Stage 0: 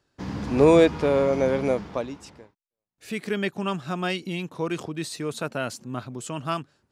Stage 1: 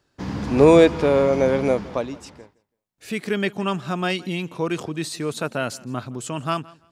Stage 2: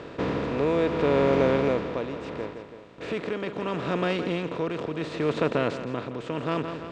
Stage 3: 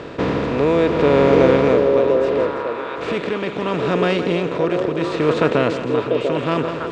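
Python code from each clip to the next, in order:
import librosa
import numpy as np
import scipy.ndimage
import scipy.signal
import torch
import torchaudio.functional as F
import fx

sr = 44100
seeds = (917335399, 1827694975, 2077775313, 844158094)

y1 = fx.echo_feedback(x, sr, ms=166, feedback_pct=21, wet_db=-22.5)
y1 = F.gain(torch.from_numpy(y1), 3.5).numpy()
y2 = fx.bin_compress(y1, sr, power=0.4)
y2 = y2 * (1.0 - 0.52 / 2.0 + 0.52 / 2.0 * np.cos(2.0 * np.pi * 0.73 * (np.arange(len(y2)) / sr)))
y2 = fx.air_absorb(y2, sr, metres=160.0)
y2 = F.gain(torch.from_numpy(y2), -7.5).numpy()
y3 = fx.echo_stepped(y2, sr, ms=694, hz=460.0, octaves=1.4, feedback_pct=70, wet_db=-1)
y3 = F.gain(torch.from_numpy(y3), 7.5).numpy()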